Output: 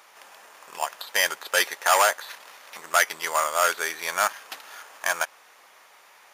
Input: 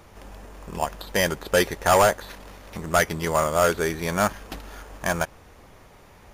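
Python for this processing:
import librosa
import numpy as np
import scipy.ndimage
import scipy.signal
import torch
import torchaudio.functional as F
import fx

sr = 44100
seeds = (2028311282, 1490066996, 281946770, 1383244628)

y = scipy.signal.sosfilt(scipy.signal.butter(2, 1000.0, 'highpass', fs=sr, output='sos'), x)
y = y * librosa.db_to_amplitude(3.0)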